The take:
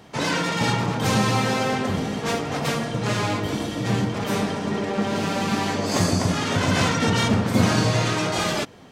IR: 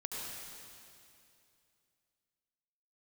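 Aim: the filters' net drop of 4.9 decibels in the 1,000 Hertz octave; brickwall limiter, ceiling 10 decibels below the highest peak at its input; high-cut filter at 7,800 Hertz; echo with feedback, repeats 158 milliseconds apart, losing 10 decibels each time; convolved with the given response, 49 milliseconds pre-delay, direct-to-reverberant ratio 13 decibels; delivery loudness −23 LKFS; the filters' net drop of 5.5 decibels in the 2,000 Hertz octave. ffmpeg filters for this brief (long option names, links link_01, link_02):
-filter_complex "[0:a]lowpass=7800,equalizer=frequency=1000:width_type=o:gain=-5,equalizer=frequency=2000:width_type=o:gain=-5.5,alimiter=limit=-16.5dB:level=0:latency=1,aecho=1:1:158|316|474|632:0.316|0.101|0.0324|0.0104,asplit=2[link_01][link_02];[1:a]atrim=start_sample=2205,adelay=49[link_03];[link_02][link_03]afir=irnorm=-1:irlink=0,volume=-14.5dB[link_04];[link_01][link_04]amix=inputs=2:normalize=0,volume=3dB"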